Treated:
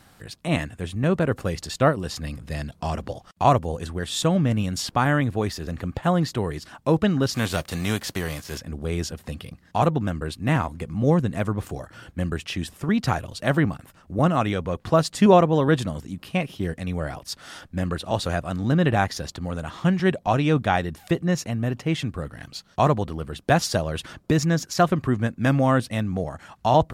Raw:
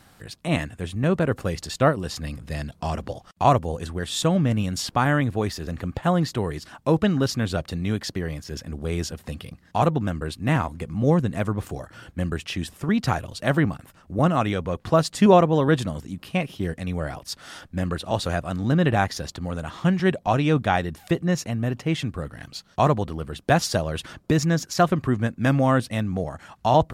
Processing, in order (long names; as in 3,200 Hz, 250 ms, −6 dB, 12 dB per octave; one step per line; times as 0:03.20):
0:07.33–0:08.57: spectral envelope flattened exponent 0.6